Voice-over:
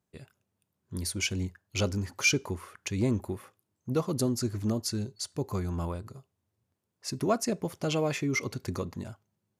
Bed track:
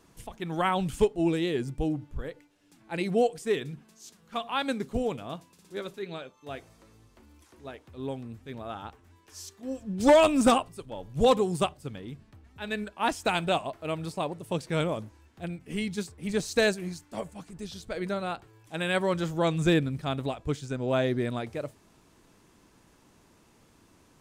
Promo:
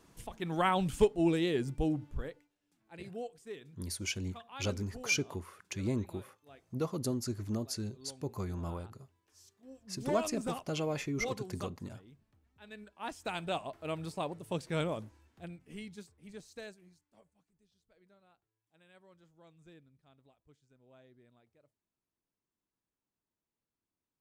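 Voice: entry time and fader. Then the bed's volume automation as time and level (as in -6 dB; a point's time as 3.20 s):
2.85 s, -6.0 dB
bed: 2.21 s -2.5 dB
2.59 s -17.5 dB
12.70 s -17.5 dB
13.84 s -5.5 dB
15.06 s -5.5 dB
17.67 s -34.5 dB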